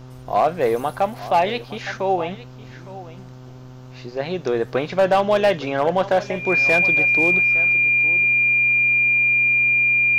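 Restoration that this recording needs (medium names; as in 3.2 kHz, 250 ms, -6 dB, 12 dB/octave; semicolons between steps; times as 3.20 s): clip repair -10 dBFS; de-hum 127.4 Hz, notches 12; band-stop 2.4 kHz, Q 30; inverse comb 862 ms -16.5 dB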